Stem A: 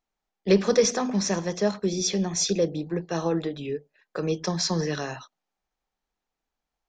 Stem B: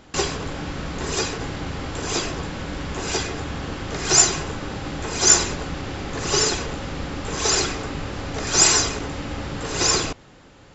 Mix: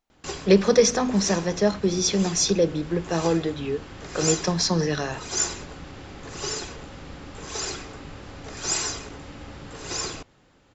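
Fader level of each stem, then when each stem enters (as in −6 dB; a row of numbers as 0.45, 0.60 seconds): +3.0, −10.5 decibels; 0.00, 0.10 seconds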